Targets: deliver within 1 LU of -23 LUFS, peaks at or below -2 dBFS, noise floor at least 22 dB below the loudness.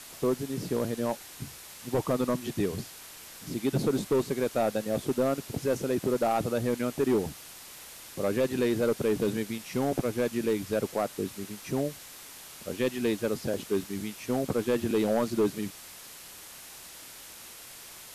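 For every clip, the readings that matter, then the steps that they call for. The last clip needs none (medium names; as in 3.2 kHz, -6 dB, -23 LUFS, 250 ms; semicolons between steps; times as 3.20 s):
clipped samples 1.2%; clipping level -19.5 dBFS; noise floor -47 dBFS; noise floor target -52 dBFS; loudness -30.0 LUFS; peak level -19.5 dBFS; loudness target -23.0 LUFS
-> clip repair -19.5 dBFS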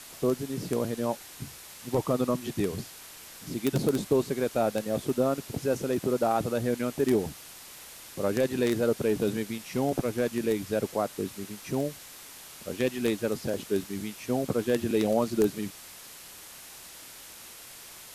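clipped samples 0.0%; noise floor -47 dBFS; noise floor target -51 dBFS
-> noise reduction 6 dB, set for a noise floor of -47 dBFS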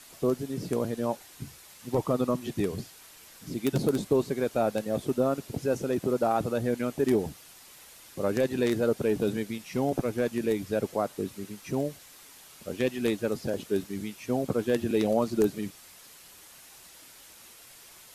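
noise floor -52 dBFS; loudness -29.5 LUFS; peak level -11.0 dBFS; loudness target -23.0 LUFS
-> trim +6.5 dB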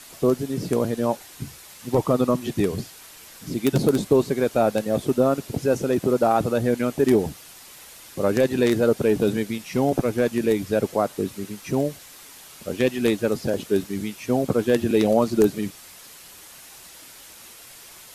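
loudness -23.0 LUFS; peak level -4.5 dBFS; noise floor -45 dBFS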